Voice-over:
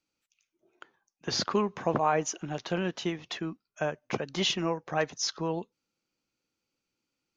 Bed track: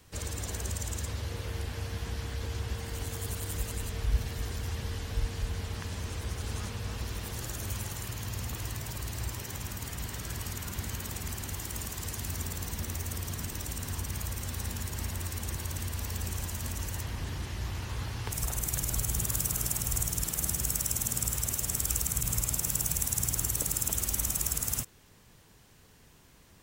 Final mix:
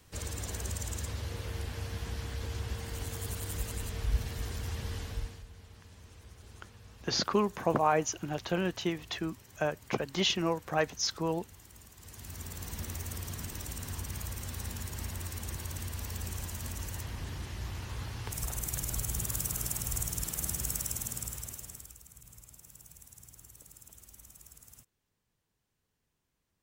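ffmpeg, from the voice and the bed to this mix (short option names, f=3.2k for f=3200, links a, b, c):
-filter_complex "[0:a]adelay=5800,volume=-0.5dB[a];[1:a]volume=11.5dB,afade=t=out:st=5.01:d=0.43:silence=0.177828,afade=t=in:st=11.97:d=0.82:silence=0.211349,afade=t=out:st=20.72:d=1.23:silence=0.1[b];[a][b]amix=inputs=2:normalize=0"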